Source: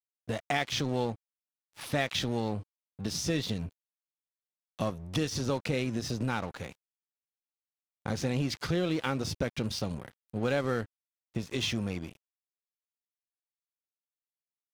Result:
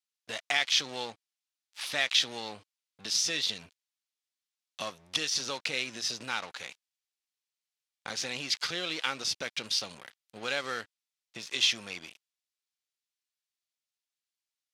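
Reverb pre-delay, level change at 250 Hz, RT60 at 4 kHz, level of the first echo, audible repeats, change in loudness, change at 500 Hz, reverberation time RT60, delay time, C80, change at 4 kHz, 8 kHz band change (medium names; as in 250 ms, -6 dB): no reverb, -13.5 dB, no reverb, no echo, no echo, +2.0 dB, -8.0 dB, no reverb, no echo, no reverb, +8.0 dB, +6.5 dB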